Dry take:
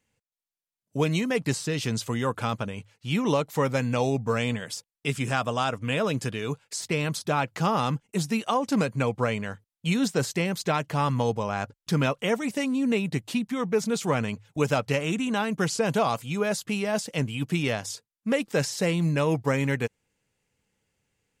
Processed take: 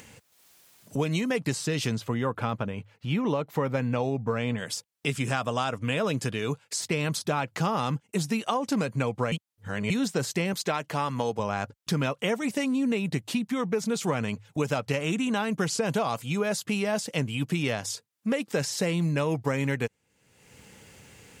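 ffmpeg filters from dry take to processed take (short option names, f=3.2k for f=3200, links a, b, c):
-filter_complex "[0:a]asettb=1/sr,asplit=3[a][b][c];[a]atrim=end=1.954[d];[b]atrim=start=1.95:end=4.58,asetpts=PTS-STARTPTS,afade=t=in:d=0.004:c=qsin,afade=t=out:st=2.626:d=0.004:c=qsin,equalizer=f=8.1k:t=o:w=2:g=-13[e];[c]atrim=start=4.576[f];[d][e]acrossfade=d=0.004:c1=hsin:c2=qsin[g];[g][f]acrossfade=d=0.004:c1=qsin:c2=hsin,asettb=1/sr,asplit=3[h][i][j];[h]atrim=end=10.534[k];[i]atrim=start=10.53:end=11.39,asetpts=PTS-STARTPTS,afade=t=in:d=0.004:c=qsin,afade=t=out:st=0.856:d=0.004:c=qsin,highpass=f=260:p=1[l];[j]atrim=start=11.386[m];[k][l]acrossfade=d=0.004:c1=hsin:c2=qsin[n];[n][m]acrossfade=d=0.004:c1=qsin:c2=hsin,asplit=3[o][p][q];[o]atrim=end=9.322[r];[p]atrim=start=9.318:end=9.902,asetpts=PTS-STARTPTS,areverse[s];[q]atrim=start=9.898[t];[r][s]acrossfade=d=0.004:c1=hsin:c2=hsin[u];[u][t]acrossfade=d=0.004:c1=hsin:c2=hsin,acompressor=threshold=-25dB:ratio=6,highpass=62,acompressor=mode=upward:threshold=-34dB:ratio=2.5,volume=2dB"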